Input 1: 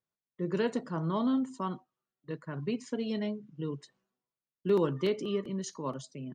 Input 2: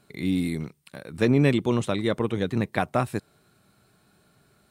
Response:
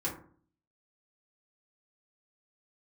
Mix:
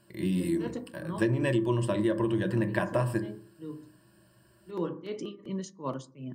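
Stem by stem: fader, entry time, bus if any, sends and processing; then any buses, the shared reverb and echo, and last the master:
+2.5 dB, 0.00 s, send −16.5 dB, amplitude tremolo 2.7 Hz, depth 98%; automatic ducking −13 dB, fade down 1.15 s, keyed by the second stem
−6.0 dB, 0.00 s, send −8 dB, EQ curve with evenly spaced ripples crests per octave 1.3, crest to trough 14 dB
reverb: on, RT60 0.50 s, pre-delay 3 ms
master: downward compressor 6 to 1, threshold −23 dBFS, peak gain reduction 8 dB

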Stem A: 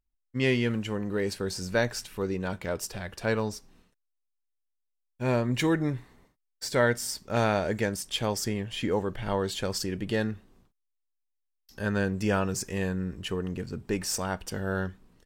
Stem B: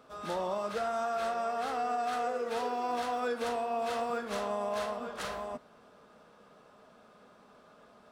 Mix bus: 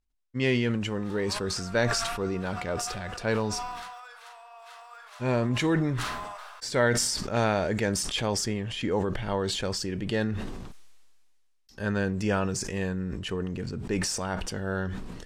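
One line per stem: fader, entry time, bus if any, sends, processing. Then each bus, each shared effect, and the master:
−0.5 dB, 0.00 s, no send, low-pass filter 8,700 Hz 12 dB per octave
−9.0 dB, 0.80 s, no send, high-pass filter 870 Hz 24 dB per octave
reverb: not used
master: level that may fall only so fast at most 30 dB per second

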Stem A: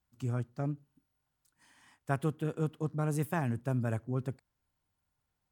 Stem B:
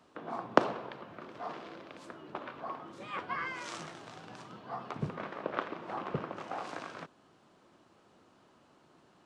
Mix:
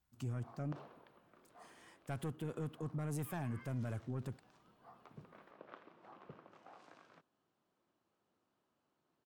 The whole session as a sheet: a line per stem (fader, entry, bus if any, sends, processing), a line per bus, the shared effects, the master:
−0.5 dB, 0.00 s, no send, soft clipping −26 dBFS, distortion −14 dB
−19.5 dB, 0.15 s, no send, no processing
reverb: not used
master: brickwall limiter −33.5 dBFS, peak gain reduction 11 dB

